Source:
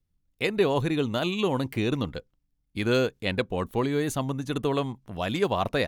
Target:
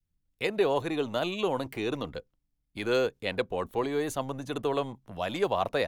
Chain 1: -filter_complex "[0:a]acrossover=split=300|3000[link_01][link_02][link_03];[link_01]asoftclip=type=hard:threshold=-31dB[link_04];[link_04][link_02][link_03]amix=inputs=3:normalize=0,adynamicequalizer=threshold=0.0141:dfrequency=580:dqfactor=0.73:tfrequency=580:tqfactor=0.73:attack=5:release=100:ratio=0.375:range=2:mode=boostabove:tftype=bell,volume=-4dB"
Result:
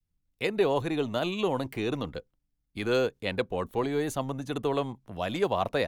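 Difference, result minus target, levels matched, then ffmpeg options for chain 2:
hard clipping: distortion −4 dB
-filter_complex "[0:a]acrossover=split=300|3000[link_01][link_02][link_03];[link_01]asoftclip=type=hard:threshold=-37dB[link_04];[link_04][link_02][link_03]amix=inputs=3:normalize=0,adynamicequalizer=threshold=0.0141:dfrequency=580:dqfactor=0.73:tfrequency=580:tqfactor=0.73:attack=5:release=100:ratio=0.375:range=2:mode=boostabove:tftype=bell,volume=-4dB"

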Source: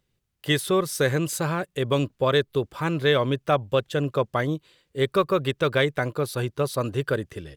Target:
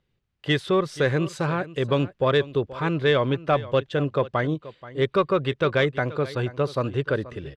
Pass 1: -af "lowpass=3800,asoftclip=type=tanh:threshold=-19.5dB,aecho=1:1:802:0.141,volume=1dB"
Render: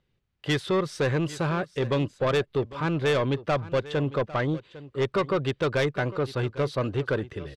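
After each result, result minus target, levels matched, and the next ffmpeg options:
echo 322 ms late; soft clipping: distortion +16 dB
-af "lowpass=3800,asoftclip=type=tanh:threshold=-19.5dB,aecho=1:1:480:0.141,volume=1dB"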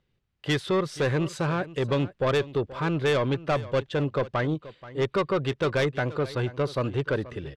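soft clipping: distortion +16 dB
-af "lowpass=3800,asoftclip=type=tanh:threshold=-8dB,aecho=1:1:480:0.141,volume=1dB"

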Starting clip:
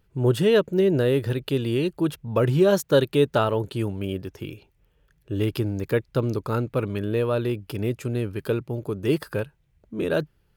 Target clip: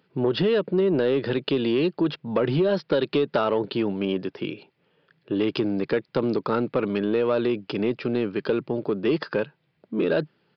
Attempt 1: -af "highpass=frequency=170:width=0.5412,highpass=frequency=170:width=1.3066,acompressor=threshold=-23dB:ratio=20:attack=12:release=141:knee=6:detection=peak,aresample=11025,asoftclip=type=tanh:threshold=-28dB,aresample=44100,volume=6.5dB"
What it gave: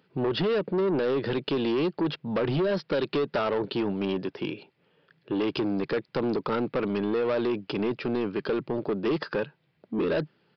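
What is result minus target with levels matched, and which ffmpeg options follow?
soft clipping: distortion +10 dB
-af "highpass=frequency=170:width=0.5412,highpass=frequency=170:width=1.3066,acompressor=threshold=-23dB:ratio=20:attack=12:release=141:knee=6:detection=peak,aresample=11025,asoftclip=type=tanh:threshold=-19dB,aresample=44100,volume=6.5dB"

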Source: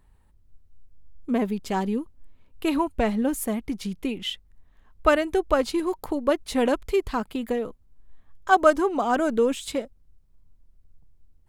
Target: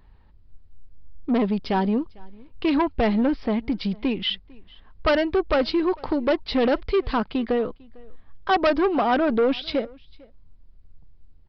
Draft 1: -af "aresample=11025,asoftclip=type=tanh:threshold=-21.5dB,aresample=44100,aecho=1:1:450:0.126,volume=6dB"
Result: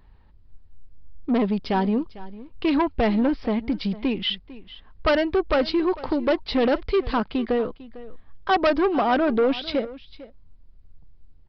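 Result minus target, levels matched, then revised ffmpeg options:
echo-to-direct +7.5 dB
-af "aresample=11025,asoftclip=type=tanh:threshold=-21.5dB,aresample=44100,aecho=1:1:450:0.0531,volume=6dB"

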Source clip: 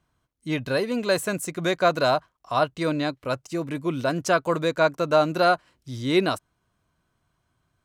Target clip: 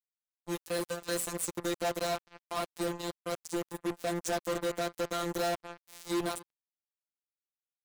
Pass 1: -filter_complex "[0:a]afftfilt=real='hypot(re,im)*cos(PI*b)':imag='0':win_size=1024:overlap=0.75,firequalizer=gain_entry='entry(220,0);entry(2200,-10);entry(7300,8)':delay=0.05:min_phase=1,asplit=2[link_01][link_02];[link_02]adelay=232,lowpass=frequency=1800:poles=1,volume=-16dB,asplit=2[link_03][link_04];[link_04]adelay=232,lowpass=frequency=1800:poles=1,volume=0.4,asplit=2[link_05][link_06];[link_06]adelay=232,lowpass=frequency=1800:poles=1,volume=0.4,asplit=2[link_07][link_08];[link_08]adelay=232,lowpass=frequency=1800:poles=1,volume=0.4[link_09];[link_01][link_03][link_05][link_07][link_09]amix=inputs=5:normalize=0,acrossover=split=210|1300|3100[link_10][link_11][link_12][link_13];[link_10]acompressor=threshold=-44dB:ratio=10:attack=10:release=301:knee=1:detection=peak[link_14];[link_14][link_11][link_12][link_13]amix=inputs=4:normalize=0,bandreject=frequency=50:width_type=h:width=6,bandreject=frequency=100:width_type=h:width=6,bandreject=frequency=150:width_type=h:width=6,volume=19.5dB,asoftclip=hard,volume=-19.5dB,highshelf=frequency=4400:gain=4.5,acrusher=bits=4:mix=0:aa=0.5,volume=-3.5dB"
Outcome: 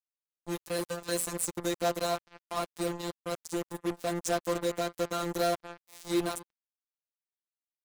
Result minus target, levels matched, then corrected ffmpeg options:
downward compressor: peak gain reduction −6 dB; gain into a clipping stage and back: distortion −7 dB
-filter_complex "[0:a]afftfilt=real='hypot(re,im)*cos(PI*b)':imag='0':win_size=1024:overlap=0.75,firequalizer=gain_entry='entry(220,0);entry(2200,-10);entry(7300,8)':delay=0.05:min_phase=1,asplit=2[link_01][link_02];[link_02]adelay=232,lowpass=frequency=1800:poles=1,volume=-16dB,asplit=2[link_03][link_04];[link_04]adelay=232,lowpass=frequency=1800:poles=1,volume=0.4,asplit=2[link_05][link_06];[link_06]adelay=232,lowpass=frequency=1800:poles=1,volume=0.4,asplit=2[link_07][link_08];[link_08]adelay=232,lowpass=frequency=1800:poles=1,volume=0.4[link_09];[link_01][link_03][link_05][link_07][link_09]amix=inputs=5:normalize=0,acrossover=split=210|1300|3100[link_10][link_11][link_12][link_13];[link_10]acompressor=threshold=-50.5dB:ratio=10:attack=10:release=301:knee=1:detection=peak[link_14];[link_14][link_11][link_12][link_13]amix=inputs=4:normalize=0,bandreject=frequency=50:width_type=h:width=6,bandreject=frequency=100:width_type=h:width=6,bandreject=frequency=150:width_type=h:width=6,volume=27dB,asoftclip=hard,volume=-27dB,highshelf=frequency=4400:gain=4.5,acrusher=bits=4:mix=0:aa=0.5,volume=-3.5dB"

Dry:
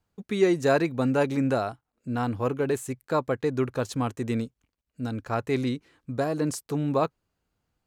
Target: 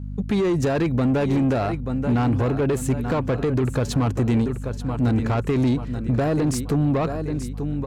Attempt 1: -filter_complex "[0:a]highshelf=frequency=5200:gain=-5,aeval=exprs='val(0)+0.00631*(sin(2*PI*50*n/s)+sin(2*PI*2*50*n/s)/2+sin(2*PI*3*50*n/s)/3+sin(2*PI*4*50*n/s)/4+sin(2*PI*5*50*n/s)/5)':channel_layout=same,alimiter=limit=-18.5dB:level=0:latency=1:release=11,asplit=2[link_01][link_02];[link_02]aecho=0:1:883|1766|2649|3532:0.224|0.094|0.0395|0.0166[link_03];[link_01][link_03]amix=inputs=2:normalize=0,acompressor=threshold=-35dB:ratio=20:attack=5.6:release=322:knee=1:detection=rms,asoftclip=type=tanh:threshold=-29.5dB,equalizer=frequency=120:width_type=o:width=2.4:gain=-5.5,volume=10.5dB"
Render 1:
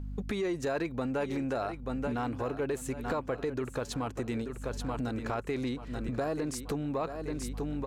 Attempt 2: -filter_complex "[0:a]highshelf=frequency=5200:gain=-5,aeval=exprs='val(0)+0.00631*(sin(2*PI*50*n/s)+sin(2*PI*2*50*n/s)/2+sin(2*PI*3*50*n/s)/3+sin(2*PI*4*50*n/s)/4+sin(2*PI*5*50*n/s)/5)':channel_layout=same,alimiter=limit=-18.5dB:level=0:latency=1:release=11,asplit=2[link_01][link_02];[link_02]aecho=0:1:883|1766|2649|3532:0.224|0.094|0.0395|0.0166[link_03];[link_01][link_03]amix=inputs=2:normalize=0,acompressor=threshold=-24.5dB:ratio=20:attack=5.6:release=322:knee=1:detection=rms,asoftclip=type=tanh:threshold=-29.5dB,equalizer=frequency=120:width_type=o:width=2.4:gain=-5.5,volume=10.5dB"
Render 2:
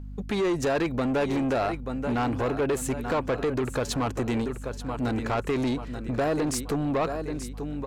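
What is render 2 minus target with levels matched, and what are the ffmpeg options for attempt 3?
125 Hz band −5.5 dB
-filter_complex "[0:a]highshelf=frequency=5200:gain=-5,aeval=exprs='val(0)+0.00631*(sin(2*PI*50*n/s)+sin(2*PI*2*50*n/s)/2+sin(2*PI*3*50*n/s)/3+sin(2*PI*4*50*n/s)/4+sin(2*PI*5*50*n/s)/5)':channel_layout=same,alimiter=limit=-18.5dB:level=0:latency=1:release=11,asplit=2[link_01][link_02];[link_02]aecho=0:1:883|1766|2649|3532:0.224|0.094|0.0395|0.0166[link_03];[link_01][link_03]amix=inputs=2:normalize=0,acompressor=threshold=-24.5dB:ratio=20:attack=5.6:release=322:knee=1:detection=rms,asoftclip=type=tanh:threshold=-29.5dB,equalizer=frequency=120:width_type=o:width=2.4:gain=6,volume=10.5dB"

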